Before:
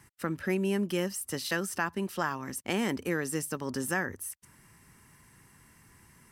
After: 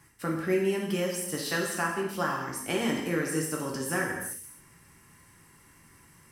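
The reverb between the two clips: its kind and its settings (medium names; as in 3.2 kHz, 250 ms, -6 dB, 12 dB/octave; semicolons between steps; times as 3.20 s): gated-style reverb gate 320 ms falling, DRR -2 dB; trim -2 dB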